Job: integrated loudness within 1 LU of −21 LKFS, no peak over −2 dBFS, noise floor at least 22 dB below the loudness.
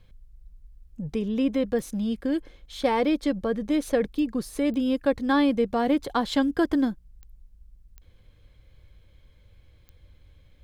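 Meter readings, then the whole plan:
number of clicks 6; integrated loudness −25.5 LKFS; sample peak −10.5 dBFS; target loudness −21.0 LKFS
→ click removal
level +4.5 dB

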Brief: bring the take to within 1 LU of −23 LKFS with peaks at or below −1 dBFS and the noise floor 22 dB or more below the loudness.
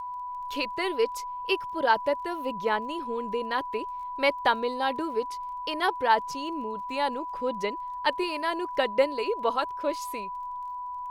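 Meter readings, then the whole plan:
crackle rate 22 per second; interfering tone 990 Hz; level of the tone −33 dBFS; integrated loudness −29.0 LKFS; sample peak −9.5 dBFS; target loudness −23.0 LKFS
→ click removal
notch filter 990 Hz, Q 30
level +6 dB

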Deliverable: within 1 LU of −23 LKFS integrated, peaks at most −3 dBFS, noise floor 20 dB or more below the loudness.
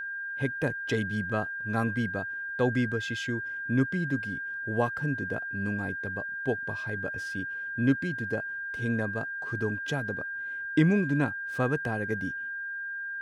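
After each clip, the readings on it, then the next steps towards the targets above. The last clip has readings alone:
interfering tone 1,600 Hz; level of the tone −33 dBFS; integrated loudness −30.0 LKFS; sample peak −11.5 dBFS; target loudness −23.0 LKFS
→ notch filter 1,600 Hz, Q 30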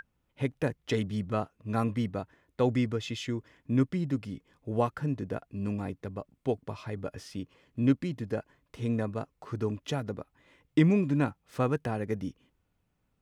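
interfering tone none found; integrated loudness −31.5 LKFS; sample peak −12.0 dBFS; target loudness −23.0 LKFS
→ level +8.5 dB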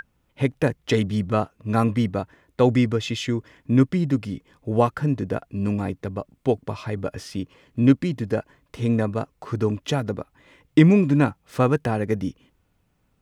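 integrated loudness −23.5 LKFS; sample peak −3.5 dBFS; background noise floor −68 dBFS

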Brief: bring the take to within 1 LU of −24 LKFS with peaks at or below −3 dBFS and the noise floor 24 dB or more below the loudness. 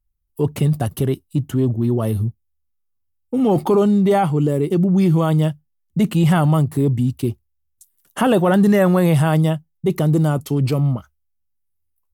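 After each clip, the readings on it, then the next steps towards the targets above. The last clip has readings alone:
integrated loudness −18.0 LKFS; sample peak −5.0 dBFS; target loudness −24.0 LKFS
→ level −6 dB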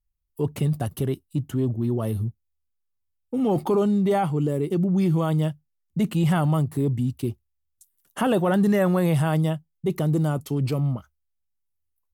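integrated loudness −24.0 LKFS; sample peak −11.0 dBFS; background noise floor −76 dBFS

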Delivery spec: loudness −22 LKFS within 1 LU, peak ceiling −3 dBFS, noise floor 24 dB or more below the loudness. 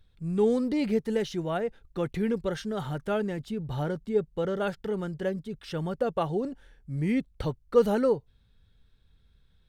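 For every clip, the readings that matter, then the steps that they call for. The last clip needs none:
integrated loudness −29.5 LKFS; sample peak −9.5 dBFS; target loudness −22.0 LKFS
→ level +7.5 dB
brickwall limiter −3 dBFS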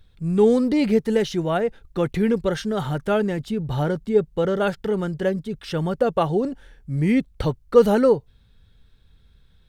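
integrated loudness −22.0 LKFS; sample peak −3.0 dBFS; background noise floor −56 dBFS

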